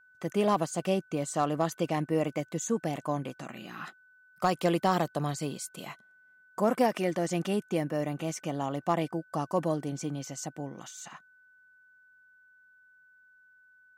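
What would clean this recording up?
clip repair -15.5 dBFS; notch 1500 Hz, Q 30

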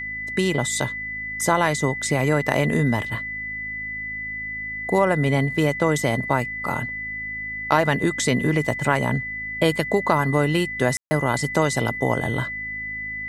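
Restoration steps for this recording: de-hum 53.2 Hz, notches 5; notch 2000 Hz, Q 30; room tone fill 10.97–11.11

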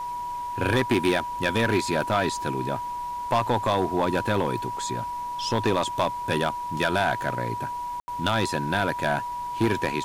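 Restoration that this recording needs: clip repair -15.5 dBFS; notch 970 Hz, Q 30; room tone fill 8–8.08; noise print and reduce 30 dB

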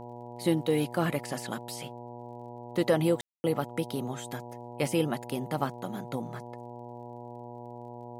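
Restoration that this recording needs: de-click; de-hum 120.4 Hz, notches 8; room tone fill 3.21–3.44

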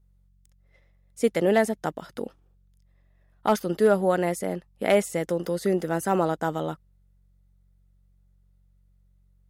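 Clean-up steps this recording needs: clip repair -10.5 dBFS; de-hum 46.3 Hz, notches 4

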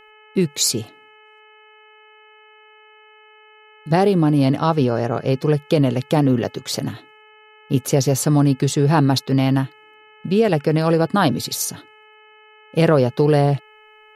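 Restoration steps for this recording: de-hum 429.3 Hz, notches 7

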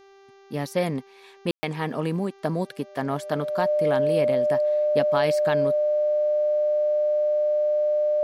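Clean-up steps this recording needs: de-hum 392.8 Hz, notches 17; notch 600 Hz, Q 30; room tone fill 1.51–1.63

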